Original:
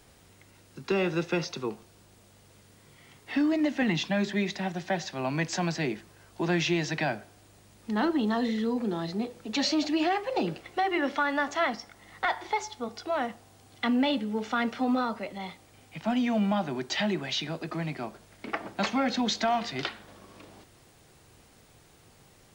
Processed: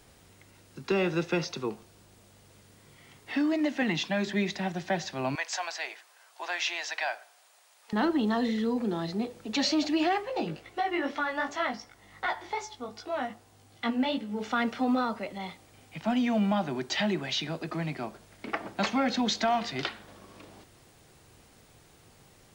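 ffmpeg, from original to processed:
-filter_complex "[0:a]asettb=1/sr,asplit=3[a][b][c];[a]atrim=end=3.324[d];[b]atrim=start=3.32:end=4.27,asetpts=PTS-STARTPTS,afade=t=in:d=0.004:c=qsin,afade=t=out:st=0.946:d=0.004:c=qsin,lowshelf=f=130:g=-10.5[e];[c]atrim=start=4.266[f];[d][e]acrossfade=d=0.004:c1=hsin:c2=qsin[g];[g][f]acrossfade=d=0.004:c1=qsin:c2=hsin,asettb=1/sr,asplit=3[h][i][j];[h]atrim=end=5.354[k];[i]atrim=start=5.35:end=7.93,asetpts=PTS-STARTPTS,afade=t=in:d=0.004:c=qsin,afade=t=out:st=2.576:d=0.004:c=qsin,highpass=f=670:w=0.5412,highpass=f=670:w=1.3066[l];[j]atrim=start=7.926[m];[k][l]acrossfade=d=0.004:c1=hsin:c2=qsin[n];[n][m]acrossfade=d=0.004:c1=qsin:c2=hsin,asplit=3[o][p][q];[o]afade=t=out:st=10.22:d=0.02[r];[p]flanger=delay=17:depth=2.9:speed=2.6,afade=t=in:st=10.22:d=0.02,afade=t=out:st=14.39:d=0.02[s];[q]afade=t=in:st=14.39:d=0.02[t];[r][s][t]amix=inputs=3:normalize=0"

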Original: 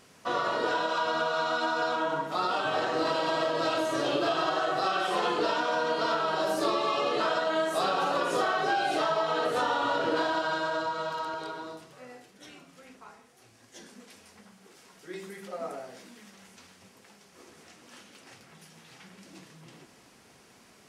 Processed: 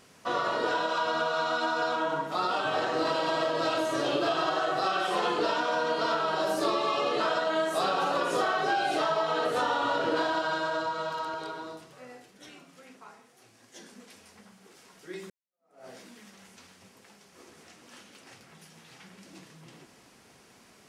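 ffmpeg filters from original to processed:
-filter_complex "[0:a]asettb=1/sr,asplit=3[a][b][c];[a]atrim=end=12.494[d];[b]atrim=start=12.49:end=13.91,asetpts=PTS-STARTPTS,afade=t=in:d=0.004:c=qsin,afade=t=out:st=1.416:d=0.004:c=qsin,highpass=120[e];[c]atrim=start=13.906[f];[d][e]acrossfade=d=0.004:c1=hsin:c2=qsin[g];[g][f]acrossfade=d=0.004:c1=qsin:c2=hsin,asplit=2[h][i];[h]atrim=end=15.3,asetpts=PTS-STARTPTS,afade=t=out:st=15.296:d=0.004:c=hsin[j];[i]atrim=start=15.3,asetpts=PTS-STARTPTS,afade=t=in:d=0.57:c=exp[k];[j][k]concat=n=2:v=0:a=1"

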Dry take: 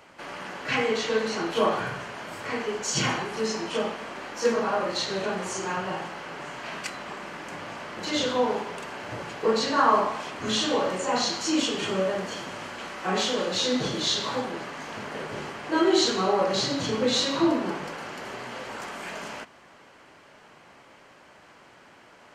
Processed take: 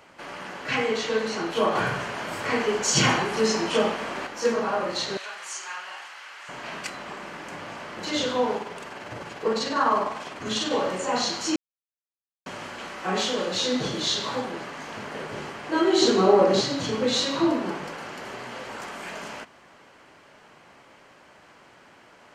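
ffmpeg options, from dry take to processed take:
-filter_complex "[0:a]asettb=1/sr,asplit=3[a][b][c];[a]atrim=end=1.754[d];[b]atrim=start=1.75:end=4.27,asetpts=PTS-STARTPTS,afade=t=in:d=0.004:c=qsin,afade=t=out:st=2.516:d=0.004:c=qsin,acontrast=37[e];[c]atrim=start=4.266[f];[d][e]acrossfade=d=0.004:c1=hsin:c2=qsin[g];[g][f]acrossfade=d=0.004:c1=qsin:c2=hsin,asettb=1/sr,asplit=3[h][i][j];[h]atrim=end=5.174[k];[i]atrim=start=5.17:end=6.49,asetpts=PTS-STARTPTS,afade=t=in:d=0.004:c=qsin,afade=t=out:st=1.316:d=0.004:c=qsin,highpass=1.4k[l];[j]atrim=start=6.486[m];[k][l]acrossfade=d=0.004:c1=hsin:c2=qsin[n];[n][m]acrossfade=d=0.004:c1=qsin:c2=hsin,asettb=1/sr,asplit=3[o][p][q];[o]atrim=end=8.574[r];[p]atrim=start=8.57:end=10.72,asetpts=PTS-STARTPTS,afade=t=in:d=0.004:c=qsin,afade=t=out:st=2.146:d=0.004:c=qsin,tremolo=f=20:d=0.39[s];[q]atrim=start=10.716[t];[r][s]acrossfade=d=0.004:c1=hsin:c2=qsin[u];[u][t]acrossfade=d=0.004:c1=qsin:c2=hsin,asettb=1/sr,asplit=3[v][w][x];[v]atrim=end=16.024[y];[w]atrim=start=16.02:end=16.62,asetpts=PTS-STARTPTS,afade=t=in:d=0.004:c=qsin,afade=t=out:st=0.596:d=0.004:c=qsin,equalizer=f=320:t=o:w=2:g=9.5[z];[x]atrim=start=16.616[aa];[y][z]acrossfade=d=0.004:c1=hsin:c2=qsin[ab];[ab][aa]acrossfade=d=0.004:c1=qsin:c2=hsin,asplit=3[ac][ad][ae];[ac]atrim=end=11.56,asetpts=PTS-STARTPTS,afade=t=out:st=11.556:d=0.004:c=hsin[af];[ad]atrim=start=11.56:end=12.46,asetpts=PTS-STARTPTS,volume=0[ag];[ae]atrim=start=12.46,asetpts=PTS-STARTPTS,afade=t=in:d=0.004:c=hsin[ah];[af][ag][ah]concat=n=3:v=0:a=1"

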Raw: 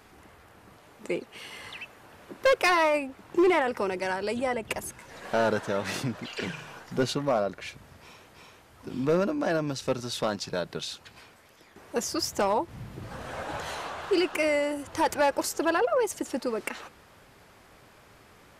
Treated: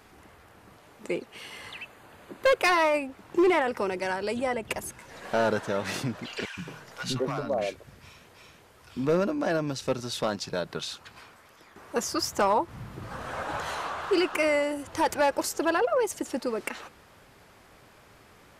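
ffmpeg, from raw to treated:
-filter_complex "[0:a]asettb=1/sr,asplit=3[a][b][c];[a]atrim=end=1.694[d];[b]atrim=start=1.69:end=2.65,asetpts=PTS-STARTPTS,afade=t=in:d=0.004:c=qsin,afade=t=out:st=0.956:d=0.004:c=qsin,bandreject=f=5.5k:w=6.3[e];[c]atrim=start=2.646[f];[d][e]acrossfade=d=0.004:c1=hsin:c2=qsin[g];[g][f]acrossfade=d=0.004:c1=qsin:c2=hsin,asettb=1/sr,asplit=3[h][i][j];[h]atrim=end=6.454[k];[i]atrim=start=6.45:end=8.97,asetpts=PTS-STARTPTS,afade=t=in:d=0.004:c=qsin,afade=t=out:st=2.516:d=0.004:c=qsin,acrossover=split=280|860[l][m][n];[l]adelay=120[o];[m]adelay=220[p];[o][p][n]amix=inputs=3:normalize=0,atrim=end_sample=111132[q];[j]atrim=start=8.966[r];[k][q]acrossfade=d=0.004:c1=hsin:c2=qsin[s];[s][r]acrossfade=d=0.004:c1=qsin:c2=hsin,asettb=1/sr,asplit=3[t][u][v];[t]atrim=end=10.674[w];[u]atrim=start=10.67:end=14.63,asetpts=PTS-STARTPTS,afade=t=in:d=0.004:c=qsin,afade=t=out:st=3.956:d=0.004:c=qsin,equalizer=f=1.2k:w=1.6:g=5.5[x];[v]atrim=start=14.626[y];[w][x]acrossfade=d=0.004:c1=hsin:c2=qsin[z];[z][y]acrossfade=d=0.004:c1=qsin:c2=hsin"

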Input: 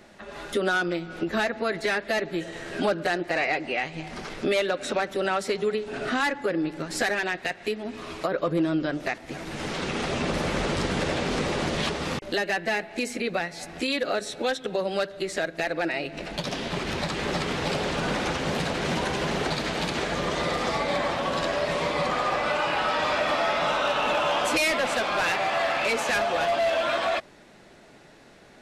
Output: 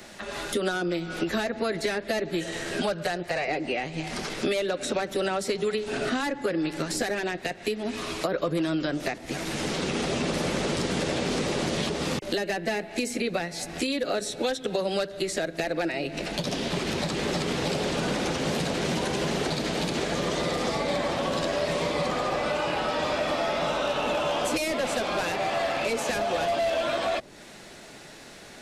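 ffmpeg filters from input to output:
-filter_complex "[0:a]asettb=1/sr,asplit=3[a][b][c];[a]atrim=end=2.814[d];[b]atrim=start=2.81:end=3.48,asetpts=PTS-STARTPTS,afade=t=in:d=0.004:c=qsin,afade=t=out:st=0.666:d=0.004:c=qsin,equalizer=f=300:w=2.2:g=-14[e];[c]atrim=start=3.476[f];[d][e]acrossfade=d=0.004:c1=hsin:c2=qsin[g];[g][f]acrossfade=d=0.004:c1=qsin:c2=hsin,highshelf=f=3.1k:g=10.5,acrossover=split=120|650[h][i][j];[h]acompressor=threshold=-48dB:ratio=4[k];[i]acompressor=threshold=-30dB:ratio=4[l];[j]acompressor=threshold=-37dB:ratio=4[m];[k][l][m]amix=inputs=3:normalize=0,volume=4dB"

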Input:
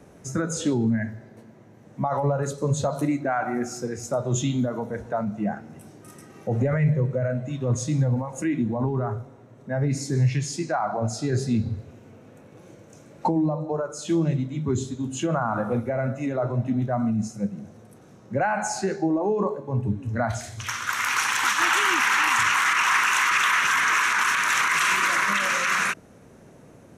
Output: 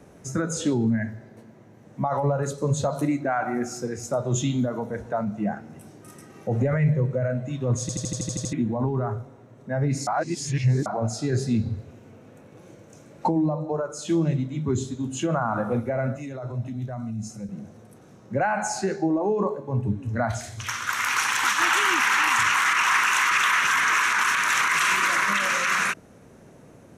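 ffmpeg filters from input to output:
-filter_complex "[0:a]asettb=1/sr,asplit=3[a][b][c];[a]atrim=end=16.164[d];[b]atrim=start=16.16:end=17.49,asetpts=PTS-STARTPTS,afade=t=in:d=0.004:c=qsin,afade=t=out:st=1.326:d=0.004:c=qsin,acrossover=split=120|3000[e][f][g];[f]acompressor=threshold=-38dB:ratio=2.5:attack=3.2:release=140:knee=2.83:detection=peak[h];[e][h][g]amix=inputs=3:normalize=0[i];[c]atrim=start=17.486[j];[d][i]acrossfade=d=0.004:c1=hsin:c2=qsin[k];[k][j]acrossfade=d=0.004:c1=qsin:c2=hsin,asplit=12[l][m][n][o][p][q][r][s][t][u][v][w];[l]atrim=end=7.892[x];[m]atrim=start=7.808:end=7.892[y];[n]atrim=start=7.808:end=7.892[z];[o]atrim=start=7.808:end=7.892[aa];[p]atrim=start=7.808:end=7.892[ab];[q]atrim=start=7.808:end=7.892[ac];[r]atrim=start=7.808:end=7.892[ad];[s]atrim=start=7.808:end=7.892[ae];[t]atrim=start=7.808:end=7.892[af];[u]atrim=start=8.528:end=10.072[ag];[v]atrim=start=10.068:end=10.862,asetpts=PTS-STARTPTS,areverse[ah];[w]atrim=start=10.858[ai];[x][y]acrossfade=d=0.004:c1=hsin:c2=hsin[aj];[aj][z]acrossfade=d=0.004:c1=hsin:c2=hsin[ak];[ak][aa]acrossfade=d=0.004:c1=hsin:c2=hsin[al];[al][ab]acrossfade=d=0.004:c1=hsin:c2=hsin[am];[am][ac]acrossfade=d=0.004:c1=hsin:c2=hsin[an];[an][ad]acrossfade=d=0.004:c1=hsin:c2=hsin[ao];[ao][ae]acrossfade=d=0.004:c1=hsin:c2=hsin[ap];[ap][af]acrossfade=d=0.004:c1=hsin:c2=hsin[aq];[aq][ag]acrossfade=d=0.004:c1=hsin:c2=hsin[ar];[ar][ah]acrossfade=d=0.004:c1=hsin:c2=hsin[as];[as][ai]acrossfade=d=0.004:c1=hsin:c2=hsin"

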